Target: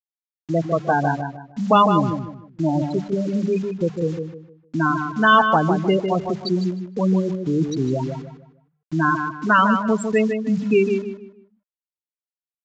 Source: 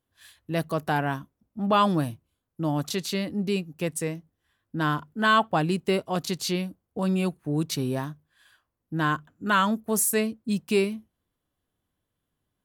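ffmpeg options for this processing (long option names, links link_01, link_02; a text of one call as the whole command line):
ffmpeg -i in.wav -filter_complex "[0:a]afftfilt=real='re*gte(hypot(re,im),0.141)':imag='im*gte(hypot(re,im),0.141)':win_size=1024:overlap=0.75,highpass=frequency=87:poles=1,bandreject=frequency=50:width_type=h:width=6,bandreject=frequency=100:width_type=h:width=6,bandreject=frequency=150:width_type=h:width=6,bandreject=frequency=200:width_type=h:width=6,adynamicequalizer=threshold=0.0112:dfrequency=310:dqfactor=1.9:tfrequency=310:tqfactor=1.9:attack=5:release=100:ratio=0.375:range=1.5:mode=cutabove:tftype=bell,asplit=2[link_01][link_02];[link_02]acompressor=threshold=-36dB:ratio=12,volume=-1dB[link_03];[link_01][link_03]amix=inputs=2:normalize=0,acrusher=bits=7:mix=0:aa=0.000001,asplit=2[link_04][link_05];[link_05]adelay=153,lowpass=frequency=2600:poles=1,volume=-6dB,asplit=2[link_06][link_07];[link_07]adelay=153,lowpass=frequency=2600:poles=1,volume=0.32,asplit=2[link_08][link_09];[link_09]adelay=153,lowpass=frequency=2600:poles=1,volume=0.32,asplit=2[link_10][link_11];[link_11]adelay=153,lowpass=frequency=2600:poles=1,volume=0.32[link_12];[link_06][link_08][link_10][link_12]amix=inputs=4:normalize=0[link_13];[link_04][link_13]amix=inputs=2:normalize=0,aresample=16000,aresample=44100,volume=6dB" out.wav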